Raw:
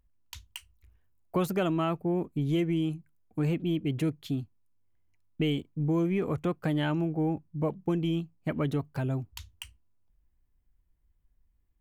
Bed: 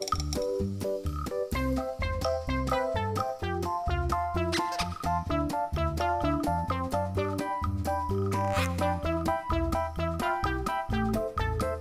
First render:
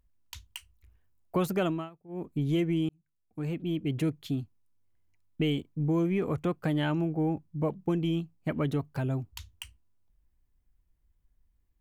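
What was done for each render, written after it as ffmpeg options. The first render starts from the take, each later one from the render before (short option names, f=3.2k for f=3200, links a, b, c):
-filter_complex "[0:a]asplit=4[a][b][c][d];[a]atrim=end=1.9,asetpts=PTS-STARTPTS,afade=t=out:st=1.66:d=0.24:silence=0.0749894[e];[b]atrim=start=1.9:end=2.08,asetpts=PTS-STARTPTS,volume=-22.5dB[f];[c]atrim=start=2.08:end=2.89,asetpts=PTS-STARTPTS,afade=t=in:d=0.24:silence=0.0749894,afade=t=out:st=0.806:d=0.004:c=hsin[g];[d]atrim=start=2.89,asetpts=PTS-STARTPTS,afade=t=in:d=1.07[h];[e][f][g][h]concat=n=4:v=0:a=1"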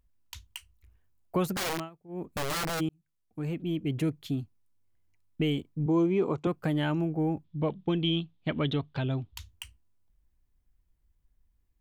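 -filter_complex "[0:a]asplit=3[a][b][c];[a]afade=t=out:st=1.55:d=0.02[d];[b]aeval=exprs='(mod(21.1*val(0)+1,2)-1)/21.1':c=same,afade=t=in:st=1.55:d=0.02,afade=t=out:st=2.79:d=0.02[e];[c]afade=t=in:st=2.79:d=0.02[f];[d][e][f]amix=inputs=3:normalize=0,asettb=1/sr,asplit=3[g][h][i];[g]atrim=end=5.864[j];[h]atrim=start=5.86:end=6.47,asetpts=PTS-STARTPTS,afade=t=in:d=0.004:c=qsin,afade=t=out:st=0.606:d=0.004:c=qsin,highpass=150,equalizer=f=370:t=q:w=4:g=6,equalizer=f=930:t=q:w=4:g=7,equalizer=f=1.8k:t=q:w=4:g=-9,equalizer=f=3.9k:t=q:w=4:g=5,lowpass=f=7.5k:w=0.5412,lowpass=f=7.5k:w=1.3066[k];[i]atrim=start=6.466[l];[j][k]acrossfade=d=0.004:c1=hsin:c2=qsin[m];[m][l]acrossfade=d=0.004:c1=qsin:c2=hsin,asettb=1/sr,asplit=3[n][o][p];[n]atrim=end=7.444[q];[o]atrim=start=7.44:end=9.36,asetpts=PTS-STARTPTS,afade=t=in:d=0.004:c=qsin,afade=t=out:st=1.916:d=0.004:c=qsin,lowpass=f=3.5k:t=q:w=6.5[r];[p]atrim=start=9.356[s];[q][r]acrossfade=d=0.004:c1=hsin:c2=qsin[t];[t][s]acrossfade=d=0.004:c1=qsin:c2=hsin"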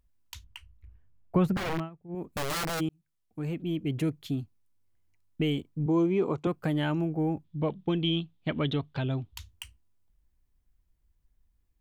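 -filter_complex "[0:a]asettb=1/sr,asplit=3[a][b][c];[a]atrim=end=0.444[d];[b]atrim=start=0.44:end=2.15,asetpts=PTS-STARTPTS,afade=t=in:d=0.004:c=qsin,afade=t=out:st=1.706:d=0.004:c=qsin,bass=f=250:g=8,treble=f=4k:g=-14[e];[c]atrim=start=2.146[f];[d][e]acrossfade=d=0.004:c1=hsin:c2=qsin[g];[g][f]acrossfade=d=0.004:c1=qsin:c2=hsin"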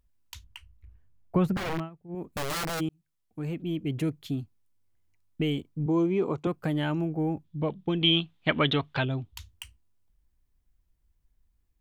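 -filter_complex "[0:a]asettb=1/sr,asplit=3[a][b][c];[a]atrim=end=8.014[d];[b]atrim=start=8.01:end=9.05,asetpts=PTS-STARTPTS,afade=t=in:d=0.004:c=qsin,afade=t=out:st=1.036:d=0.004:c=qsin,equalizer=f=1.8k:w=0.34:g=11[e];[c]atrim=start=9.046[f];[d][e]acrossfade=d=0.004:c1=hsin:c2=qsin[g];[g][f]acrossfade=d=0.004:c1=qsin:c2=hsin"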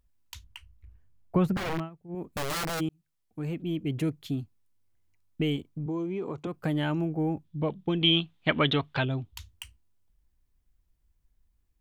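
-filter_complex "[0:a]asettb=1/sr,asplit=3[a][b][c];[a]atrim=end=5.564[d];[b]atrim=start=5.56:end=6.6,asetpts=PTS-STARTPTS,afade=t=in:d=0.004:c=qsin,afade=t=out:st=1.036:d=0.004:c=qsin,acompressor=threshold=-31dB:ratio=3:attack=3.2:release=140:knee=1:detection=peak[e];[c]atrim=start=6.596[f];[d][e]acrossfade=d=0.004:c1=hsin:c2=qsin[g];[g][f]acrossfade=d=0.004:c1=qsin:c2=hsin"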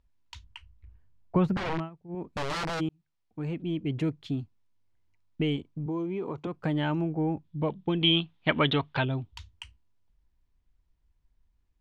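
-af "lowpass=4.9k,equalizer=f=930:w=6.7:g=4.5"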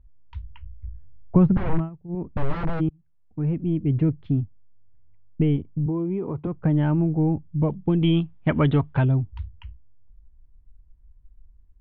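-af "lowpass=2.4k,aemphasis=mode=reproduction:type=riaa"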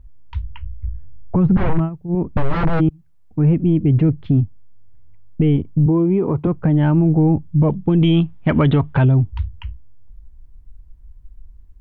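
-filter_complex "[0:a]asplit=2[a][b];[b]acontrast=80,volume=0dB[c];[a][c]amix=inputs=2:normalize=0,alimiter=limit=-8dB:level=0:latency=1:release=50"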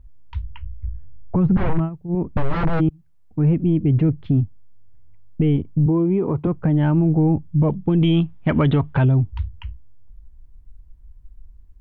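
-af "volume=-2.5dB"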